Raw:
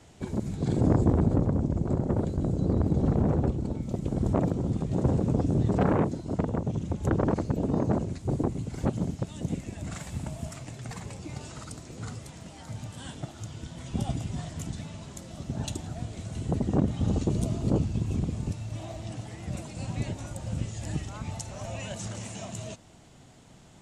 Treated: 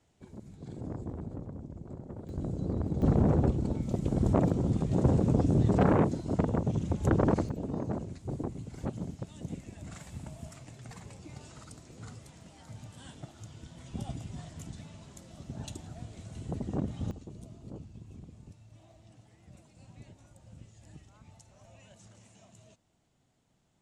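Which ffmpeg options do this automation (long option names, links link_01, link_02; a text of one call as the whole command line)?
ffmpeg -i in.wav -af "asetnsamples=nb_out_samples=441:pad=0,asendcmd='2.29 volume volume -7dB;3.02 volume volume 0dB;7.49 volume volume -8dB;17.11 volume volume -19.5dB',volume=-16.5dB" out.wav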